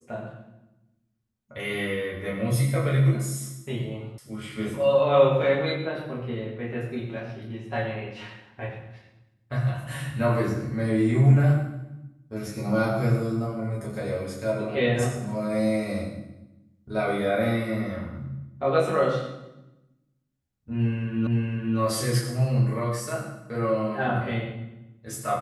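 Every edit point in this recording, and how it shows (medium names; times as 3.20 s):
4.18 s: sound stops dead
21.27 s: repeat of the last 0.51 s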